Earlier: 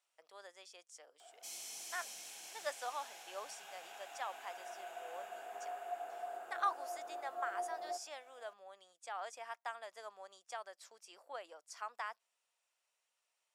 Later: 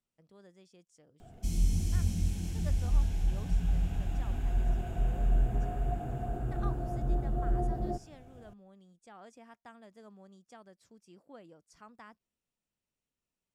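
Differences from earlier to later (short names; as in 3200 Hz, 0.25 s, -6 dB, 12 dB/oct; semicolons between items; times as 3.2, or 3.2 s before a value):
speech -10.5 dB; master: remove HPF 640 Hz 24 dB/oct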